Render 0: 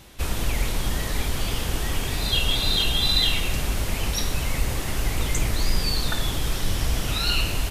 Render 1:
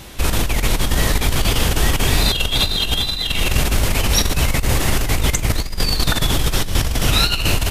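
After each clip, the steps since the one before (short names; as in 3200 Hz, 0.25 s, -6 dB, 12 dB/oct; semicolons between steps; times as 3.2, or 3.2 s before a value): negative-ratio compressor -24 dBFS, ratio -0.5; gain +8.5 dB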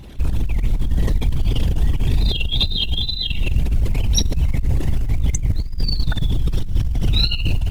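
formant sharpening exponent 2; dynamic EQ 1400 Hz, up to -8 dB, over -44 dBFS, Q 1.5; companded quantiser 8-bit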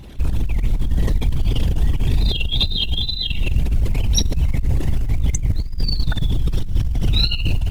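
nothing audible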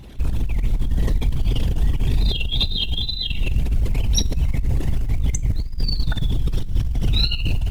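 reverb RT60 0.50 s, pre-delay 3 ms, DRR 18 dB; gain -2 dB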